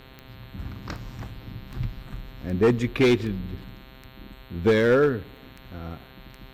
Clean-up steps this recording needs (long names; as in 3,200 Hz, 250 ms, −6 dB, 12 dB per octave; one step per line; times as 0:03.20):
clipped peaks rebuilt −13.5 dBFS
click removal
hum removal 131.3 Hz, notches 33